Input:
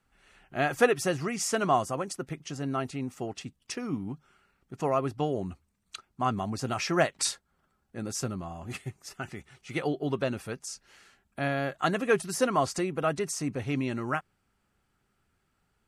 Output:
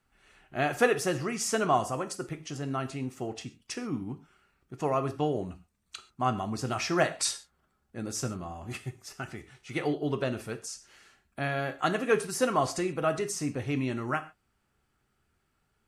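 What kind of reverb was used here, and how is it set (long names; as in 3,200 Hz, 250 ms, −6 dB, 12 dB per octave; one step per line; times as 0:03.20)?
reverb whose tail is shaped and stops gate 160 ms falling, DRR 8 dB
level −1 dB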